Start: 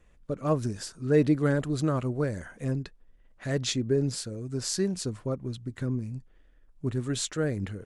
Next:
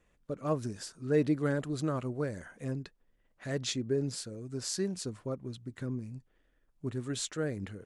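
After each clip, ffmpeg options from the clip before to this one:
ffmpeg -i in.wav -af "lowshelf=frequency=74:gain=-10.5,volume=-4.5dB" out.wav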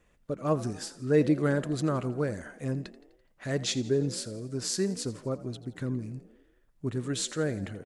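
ffmpeg -i in.wav -filter_complex "[0:a]asplit=6[link_01][link_02][link_03][link_04][link_05][link_06];[link_02]adelay=84,afreqshift=48,volume=-17.5dB[link_07];[link_03]adelay=168,afreqshift=96,volume=-22.4dB[link_08];[link_04]adelay=252,afreqshift=144,volume=-27.3dB[link_09];[link_05]adelay=336,afreqshift=192,volume=-32.1dB[link_10];[link_06]adelay=420,afreqshift=240,volume=-37dB[link_11];[link_01][link_07][link_08][link_09][link_10][link_11]amix=inputs=6:normalize=0,volume=4dB" out.wav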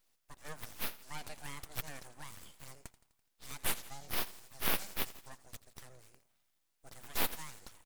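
ffmpeg -i in.wav -filter_complex "[0:a]acrossover=split=460[link_01][link_02];[link_02]acompressor=threshold=-30dB:ratio=2[link_03];[link_01][link_03]amix=inputs=2:normalize=0,aderivative,aeval=exprs='abs(val(0))':channel_layout=same,volume=6dB" out.wav

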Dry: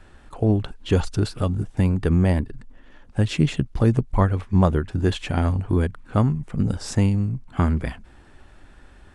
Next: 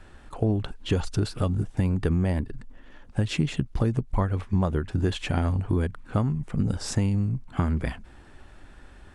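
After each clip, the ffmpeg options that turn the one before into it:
ffmpeg -i in.wav -af "acompressor=threshold=-20dB:ratio=6" out.wav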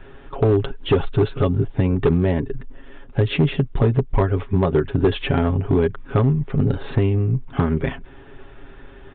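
ffmpeg -i in.wav -af "equalizer=frequency=400:width=3.6:gain=9.5,aecho=1:1:7.3:0.57,aresample=8000,asoftclip=type=hard:threshold=-15.5dB,aresample=44100,volume=5dB" out.wav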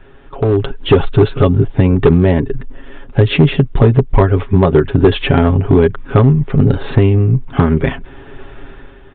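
ffmpeg -i in.wav -af "dynaudnorm=framelen=130:gausssize=9:maxgain=11dB" out.wav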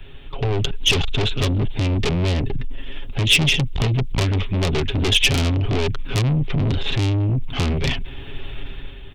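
ffmpeg -i in.wav -filter_complex "[0:a]aeval=exprs='(tanh(6.31*val(0)+0.3)-tanh(0.3))/6.31':channel_layout=same,acrossover=split=160[link_01][link_02];[link_01]aeval=exprs='0.224*sin(PI/2*2*val(0)/0.224)':channel_layout=same[link_03];[link_02]aexciter=amount=6.9:drive=3.4:freq=2300[link_04];[link_03][link_04]amix=inputs=2:normalize=0,volume=-4.5dB" out.wav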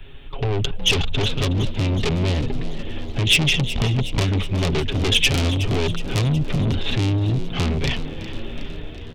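ffmpeg -i in.wav -filter_complex "[0:a]asplit=8[link_01][link_02][link_03][link_04][link_05][link_06][link_07][link_08];[link_02]adelay=368,afreqshift=74,volume=-14dB[link_09];[link_03]adelay=736,afreqshift=148,volume=-18.3dB[link_10];[link_04]adelay=1104,afreqshift=222,volume=-22.6dB[link_11];[link_05]adelay=1472,afreqshift=296,volume=-26.9dB[link_12];[link_06]adelay=1840,afreqshift=370,volume=-31.2dB[link_13];[link_07]adelay=2208,afreqshift=444,volume=-35.5dB[link_14];[link_08]adelay=2576,afreqshift=518,volume=-39.8dB[link_15];[link_01][link_09][link_10][link_11][link_12][link_13][link_14][link_15]amix=inputs=8:normalize=0,volume=-1dB" out.wav

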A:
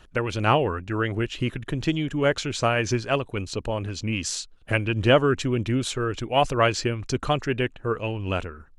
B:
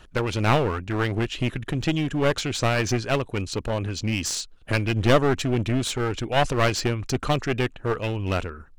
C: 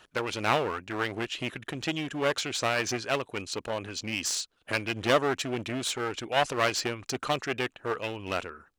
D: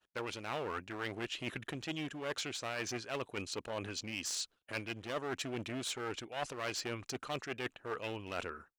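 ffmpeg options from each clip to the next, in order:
ffmpeg -i in.wav -af "aeval=exprs='clip(val(0),-1,0.0447)':channel_layout=same,volume=2.5dB" out.wav
ffmpeg -i in.wav -af "highpass=frequency=510:poles=1,volume=-2dB" out.wav
ffmpeg -i in.wav -af "agate=range=-33dB:threshold=-47dB:ratio=3:detection=peak,areverse,acompressor=threshold=-35dB:ratio=6,areverse,volume=-1dB" out.wav

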